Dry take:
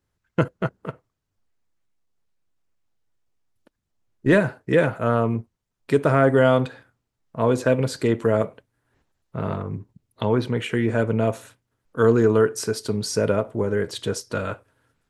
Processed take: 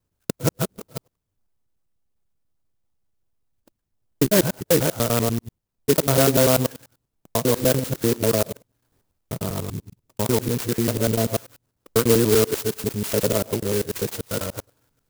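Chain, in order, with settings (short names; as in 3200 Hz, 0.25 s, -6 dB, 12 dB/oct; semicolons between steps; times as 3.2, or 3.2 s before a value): local time reversal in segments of 98 ms; clock jitter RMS 0.14 ms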